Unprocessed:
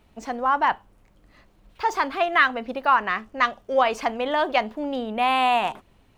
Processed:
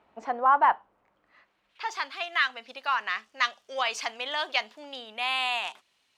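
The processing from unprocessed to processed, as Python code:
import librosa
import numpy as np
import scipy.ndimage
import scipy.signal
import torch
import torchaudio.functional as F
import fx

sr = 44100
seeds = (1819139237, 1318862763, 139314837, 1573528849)

y = fx.filter_sweep_bandpass(x, sr, from_hz=950.0, to_hz=5000.0, start_s=1.02, end_s=2.18, q=0.95)
y = fx.rider(y, sr, range_db=4, speed_s=2.0)
y = y * librosa.db_to_amplitude(2.0)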